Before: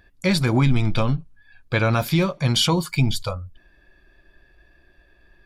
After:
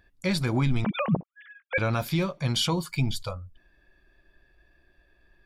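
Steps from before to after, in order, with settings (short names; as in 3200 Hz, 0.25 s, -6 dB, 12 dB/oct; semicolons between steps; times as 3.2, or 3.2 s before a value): 0.84–1.78 sine-wave speech; gain -6.5 dB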